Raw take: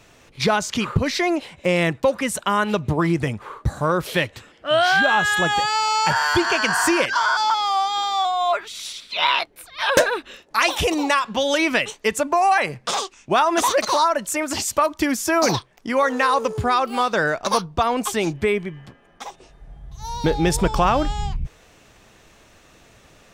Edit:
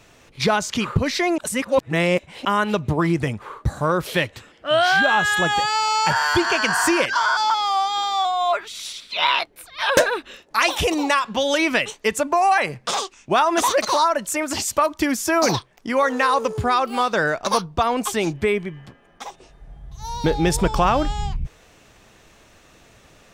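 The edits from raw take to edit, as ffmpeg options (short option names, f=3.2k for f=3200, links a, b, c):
-filter_complex "[0:a]asplit=3[a][b][c];[a]atrim=end=1.382[d];[b]atrim=start=1.378:end=2.452,asetpts=PTS-STARTPTS,areverse[e];[c]atrim=start=2.448[f];[d][e]acrossfade=d=0.004:c1=hsin:c2=hsin[g];[g][f]acrossfade=d=0.004:c1=hsin:c2=hsin"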